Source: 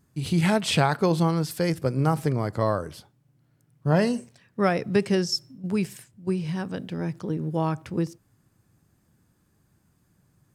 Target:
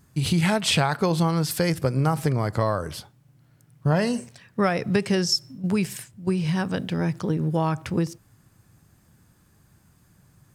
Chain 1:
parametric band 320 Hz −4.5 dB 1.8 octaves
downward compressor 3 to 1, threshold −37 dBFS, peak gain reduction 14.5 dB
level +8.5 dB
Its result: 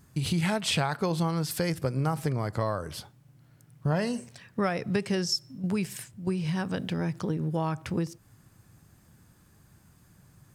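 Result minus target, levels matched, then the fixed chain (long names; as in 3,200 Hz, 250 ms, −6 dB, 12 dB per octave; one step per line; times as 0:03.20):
downward compressor: peak gain reduction +5.5 dB
parametric band 320 Hz −4.5 dB 1.8 octaves
downward compressor 3 to 1, threshold −28.5 dBFS, peak gain reduction 8.5 dB
level +8.5 dB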